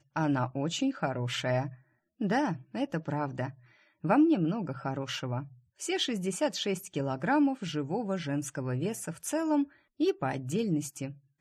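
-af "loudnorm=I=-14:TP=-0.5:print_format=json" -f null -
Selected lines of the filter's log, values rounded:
"input_i" : "-31.5",
"input_tp" : "-13.9",
"input_lra" : "1.9",
"input_thresh" : "-41.8",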